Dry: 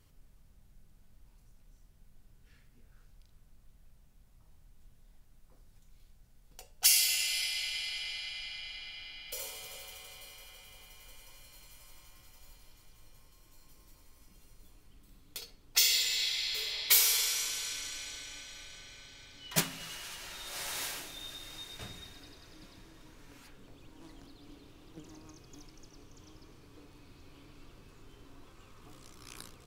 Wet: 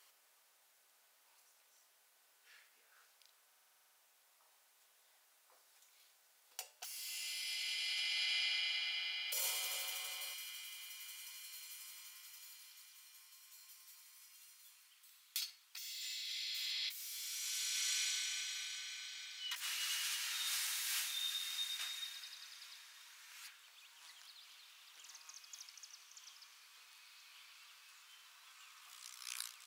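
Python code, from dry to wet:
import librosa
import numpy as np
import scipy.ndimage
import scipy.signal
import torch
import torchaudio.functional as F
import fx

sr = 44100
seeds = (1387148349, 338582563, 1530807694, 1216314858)

y = 10.0 ** (-27.0 / 20.0) * np.tanh(x / 10.0 ** (-27.0 / 20.0))
y = fx.over_compress(y, sr, threshold_db=-42.0, ratio=-1.0)
y = fx.bessel_highpass(y, sr, hz=fx.steps((0.0, 900.0), (10.33, 1800.0)), order=4)
y = fx.buffer_glitch(y, sr, at_s=(3.47,), block=2048, repeats=10)
y = y * 10.0 ** (2.0 / 20.0)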